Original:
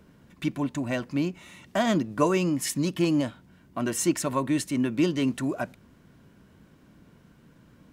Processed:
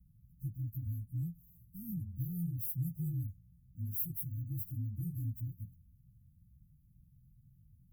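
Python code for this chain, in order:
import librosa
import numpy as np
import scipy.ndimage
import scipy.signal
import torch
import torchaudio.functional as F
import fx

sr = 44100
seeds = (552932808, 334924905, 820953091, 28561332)

y = fx.partial_stretch(x, sr, pct=121)
y = scipy.signal.sosfilt(scipy.signal.cheby2(4, 70, [540.0, 4000.0], 'bandstop', fs=sr, output='sos'), y)
y = y * librosa.db_to_amplitude(1.0)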